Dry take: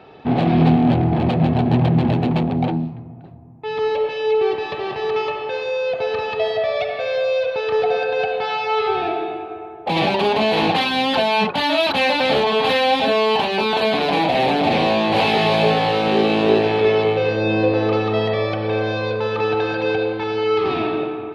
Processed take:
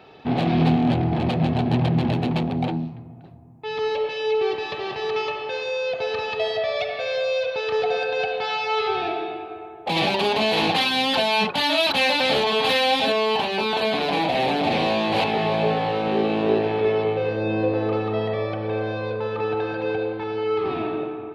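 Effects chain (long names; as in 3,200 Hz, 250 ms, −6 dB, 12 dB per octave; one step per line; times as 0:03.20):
high-shelf EQ 3,200 Hz +9.5 dB, from 0:13.12 +3 dB, from 0:15.24 −10 dB
level −4.5 dB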